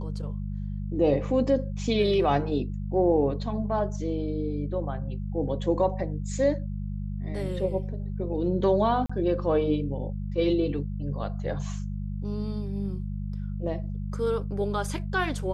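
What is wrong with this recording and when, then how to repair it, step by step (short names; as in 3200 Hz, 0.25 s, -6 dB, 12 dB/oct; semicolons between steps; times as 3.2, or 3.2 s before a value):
hum 50 Hz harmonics 4 -32 dBFS
9.06–9.1 gap 35 ms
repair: de-hum 50 Hz, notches 4; interpolate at 9.06, 35 ms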